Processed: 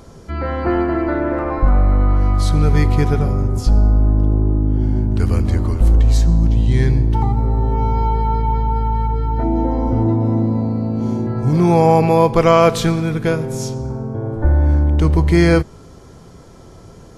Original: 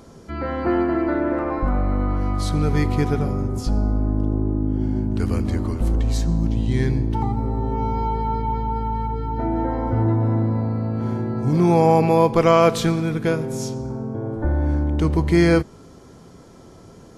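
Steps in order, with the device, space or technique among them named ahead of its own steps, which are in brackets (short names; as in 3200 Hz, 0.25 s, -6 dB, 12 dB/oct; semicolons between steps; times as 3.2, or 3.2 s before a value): low shelf boost with a cut just above (low shelf 90 Hz +7.5 dB; bell 250 Hz -4 dB 0.88 oct); 9.43–11.27 fifteen-band EQ 100 Hz -6 dB, 250 Hz +7 dB, 1600 Hz -12 dB, 6300 Hz +8 dB; gain +3.5 dB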